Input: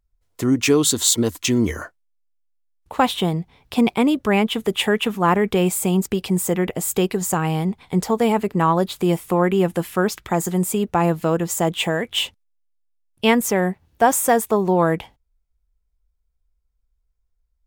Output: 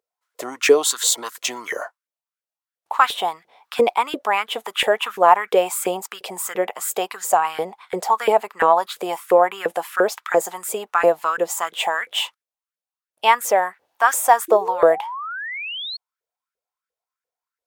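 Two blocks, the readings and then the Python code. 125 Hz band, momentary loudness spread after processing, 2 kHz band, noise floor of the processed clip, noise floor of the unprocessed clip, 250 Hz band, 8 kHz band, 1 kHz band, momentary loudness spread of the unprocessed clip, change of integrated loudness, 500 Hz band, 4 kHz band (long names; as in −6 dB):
−24.0 dB, 13 LU, +3.0 dB, below −85 dBFS, −70 dBFS, −14.0 dB, −1.5 dB, +4.5 dB, 7 LU, −0.5 dB, +1.5 dB, −0.5 dB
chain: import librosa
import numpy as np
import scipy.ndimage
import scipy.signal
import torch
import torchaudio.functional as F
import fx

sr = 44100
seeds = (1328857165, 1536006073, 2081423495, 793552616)

y = fx.filter_lfo_highpass(x, sr, shape='saw_up', hz=2.9, low_hz=450.0, high_hz=1700.0, q=5.1)
y = fx.spec_paint(y, sr, seeds[0], shape='rise', start_s=14.48, length_s=1.49, low_hz=330.0, high_hz=4400.0, level_db=-28.0)
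y = F.gain(torch.from_numpy(y), -1.5).numpy()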